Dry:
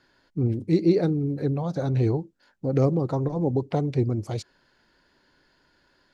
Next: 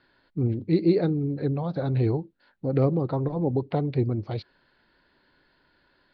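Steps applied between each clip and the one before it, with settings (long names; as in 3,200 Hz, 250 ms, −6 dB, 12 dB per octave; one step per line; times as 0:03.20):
elliptic low-pass filter 4,300 Hz, stop band 50 dB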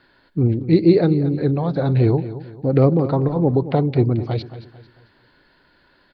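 repeating echo 223 ms, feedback 37%, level −14 dB
level +7.5 dB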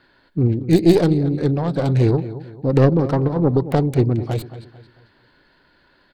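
stylus tracing distortion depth 0.27 ms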